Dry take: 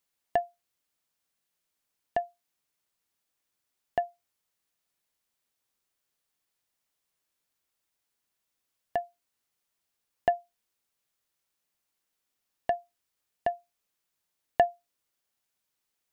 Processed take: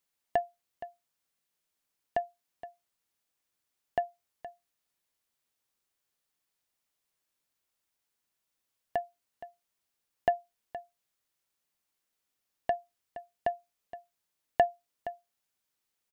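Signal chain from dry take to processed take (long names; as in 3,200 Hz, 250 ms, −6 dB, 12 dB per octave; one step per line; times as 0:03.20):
single-tap delay 469 ms −14.5 dB
level −1.5 dB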